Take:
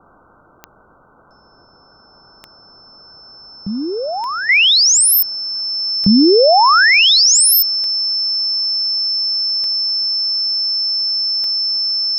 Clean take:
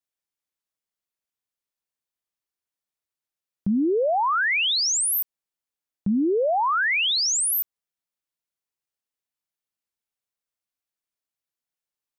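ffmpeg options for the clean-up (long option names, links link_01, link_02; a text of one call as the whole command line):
ffmpeg -i in.wav -af "adeclick=threshold=4,bandreject=frequency=5300:width=30,afwtdn=0.011,asetnsamples=nb_out_samples=441:pad=0,asendcmd='4.49 volume volume -11.5dB',volume=0dB" out.wav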